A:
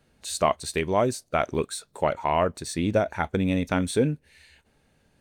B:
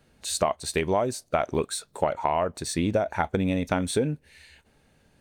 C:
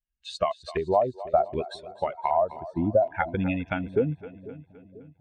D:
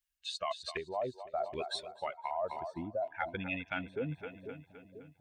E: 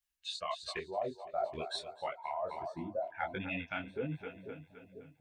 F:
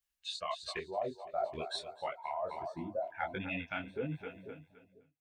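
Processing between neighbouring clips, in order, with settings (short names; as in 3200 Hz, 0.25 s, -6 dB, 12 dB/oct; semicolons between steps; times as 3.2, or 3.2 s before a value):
dynamic EQ 750 Hz, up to +5 dB, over -36 dBFS, Q 1.3; compressor 6:1, threshold -23 dBFS, peak gain reduction 10.5 dB; gain +2.5 dB
per-bin expansion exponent 2; LFO low-pass square 0.65 Hz 780–2700 Hz; split-band echo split 440 Hz, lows 0.493 s, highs 0.258 s, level -16 dB; gain +1 dB
tilt shelf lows -8 dB, about 770 Hz; reverse; compressor 4:1, threshold -35 dBFS, peak gain reduction 15 dB; reverse
detuned doubles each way 50 cents; gain +3 dB
ending faded out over 0.86 s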